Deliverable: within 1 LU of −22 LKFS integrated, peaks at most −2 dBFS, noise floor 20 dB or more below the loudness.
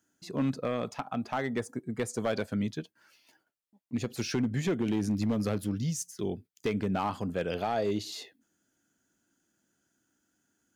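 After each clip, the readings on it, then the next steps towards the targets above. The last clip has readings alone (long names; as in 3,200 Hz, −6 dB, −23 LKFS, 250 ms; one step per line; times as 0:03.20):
share of clipped samples 0.9%; peaks flattened at −22.5 dBFS; integrated loudness −32.5 LKFS; sample peak −22.5 dBFS; target loudness −22.0 LKFS
→ clipped peaks rebuilt −22.5 dBFS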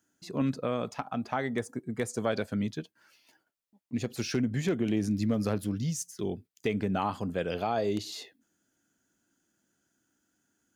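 share of clipped samples 0.0%; integrated loudness −32.0 LKFS; sample peak −15.0 dBFS; target loudness −22.0 LKFS
→ level +10 dB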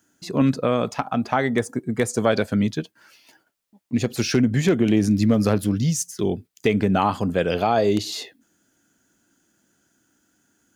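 integrated loudness −22.0 LKFS; sample peak −5.0 dBFS; background noise floor −68 dBFS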